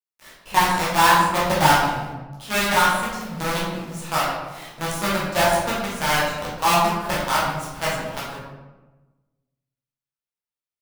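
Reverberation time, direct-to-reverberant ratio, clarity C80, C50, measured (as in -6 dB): 1.2 s, -8.0 dB, 3.5 dB, 0.5 dB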